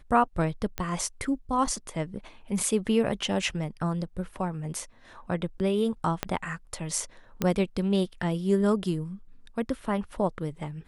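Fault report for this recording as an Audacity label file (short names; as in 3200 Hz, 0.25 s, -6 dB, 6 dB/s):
0.780000	0.780000	pop -14 dBFS
6.230000	6.230000	pop -10 dBFS
7.420000	7.420000	pop -12 dBFS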